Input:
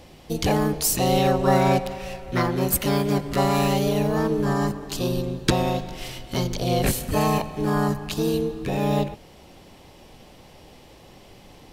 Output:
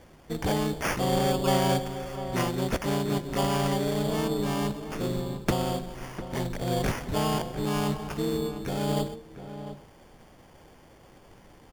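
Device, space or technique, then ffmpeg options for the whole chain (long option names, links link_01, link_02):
crushed at another speed: -filter_complex "[0:a]asetrate=35280,aresample=44100,acrusher=samples=14:mix=1:aa=0.000001,asetrate=55125,aresample=44100,asplit=2[link_01][link_02];[link_02]adelay=699.7,volume=-11dB,highshelf=frequency=4000:gain=-15.7[link_03];[link_01][link_03]amix=inputs=2:normalize=0,volume=-5.5dB"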